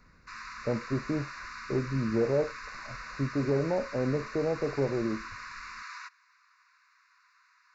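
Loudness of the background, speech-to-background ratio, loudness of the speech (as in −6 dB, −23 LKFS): −42.0 LKFS, 10.5 dB, −31.5 LKFS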